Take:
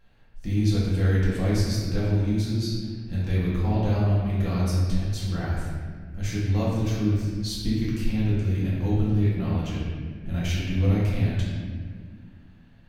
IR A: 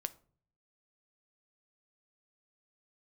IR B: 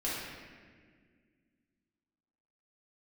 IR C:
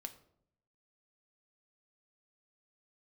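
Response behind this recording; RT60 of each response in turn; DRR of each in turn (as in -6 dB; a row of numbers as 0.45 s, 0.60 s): B; 0.50 s, 1.8 s, 0.70 s; 11.5 dB, -8.5 dB, 6.5 dB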